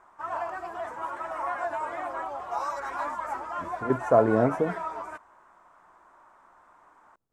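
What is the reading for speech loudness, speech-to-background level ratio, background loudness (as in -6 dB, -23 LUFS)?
-24.5 LUFS, 9.0 dB, -33.5 LUFS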